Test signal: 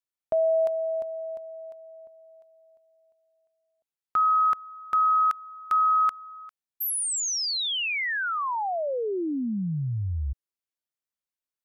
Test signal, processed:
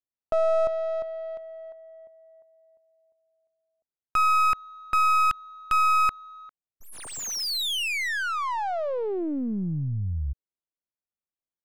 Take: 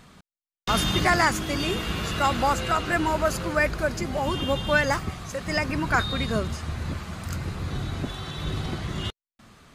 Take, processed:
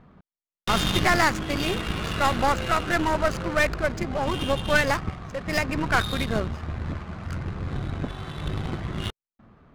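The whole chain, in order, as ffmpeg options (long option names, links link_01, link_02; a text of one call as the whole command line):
ffmpeg -i in.wav -af "aeval=exprs='0.422*(cos(1*acos(clip(val(0)/0.422,-1,1)))-cos(1*PI/2))+0.0473*(cos(6*acos(clip(val(0)/0.422,-1,1)))-cos(6*PI/2))':channel_layout=same,adynamicsmooth=sensitivity=7:basefreq=1100" out.wav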